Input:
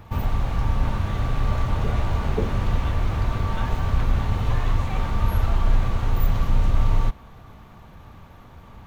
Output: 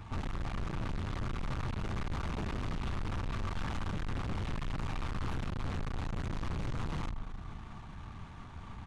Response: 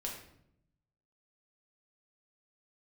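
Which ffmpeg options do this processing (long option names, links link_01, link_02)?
-filter_complex "[0:a]equalizer=frequency=530:width=2.3:gain=-10.5,asplit=2[link_01][link_02];[link_02]adelay=134,lowpass=frequency=2000:poles=1,volume=-13dB,asplit=2[link_03][link_04];[link_04]adelay=134,lowpass=frequency=2000:poles=1,volume=0.29,asplit=2[link_05][link_06];[link_06]adelay=134,lowpass=frequency=2000:poles=1,volume=0.29[link_07];[link_01][link_03][link_05][link_07]amix=inputs=4:normalize=0,aeval=exprs='0.119*(abs(mod(val(0)/0.119+3,4)-2)-1)':channel_layout=same,asplit=2[link_08][link_09];[1:a]atrim=start_sample=2205,asetrate=23814,aresample=44100[link_10];[link_09][link_10]afir=irnorm=-1:irlink=0,volume=-20.5dB[link_11];[link_08][link_11]amix=inputs=2:normalize=0,aresample=22050,aresample=44100,aeval=exprs='(tanh(50.1*val(0)+0.45)-tanh(0.45))/50.1':channel_layout=same"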